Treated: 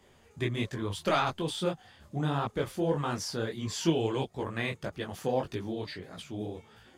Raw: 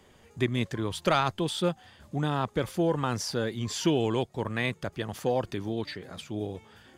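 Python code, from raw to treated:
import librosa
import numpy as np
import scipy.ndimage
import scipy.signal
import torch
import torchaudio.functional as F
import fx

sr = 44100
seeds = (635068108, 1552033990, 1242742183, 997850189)

y = fx.detune_double(x, sr, cents=56)
y = y * 10.0 ** (1.0 / 20.0)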